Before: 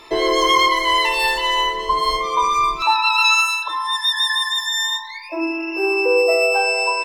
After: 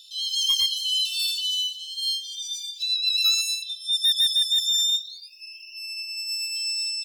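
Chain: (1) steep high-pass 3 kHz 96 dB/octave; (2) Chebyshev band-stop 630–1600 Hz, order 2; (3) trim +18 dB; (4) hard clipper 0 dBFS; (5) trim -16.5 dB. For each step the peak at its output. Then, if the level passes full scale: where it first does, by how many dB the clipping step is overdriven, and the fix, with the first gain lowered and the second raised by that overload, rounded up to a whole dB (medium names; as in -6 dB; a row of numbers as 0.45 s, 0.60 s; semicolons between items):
-11.0 dBFS, -11.5 dBFS, +6.5 dBFS, 0.0 dBFS, -16.5 dBFS; step 3, 6.5 dB; step 3 +11 dB, step 5 -9.5 dB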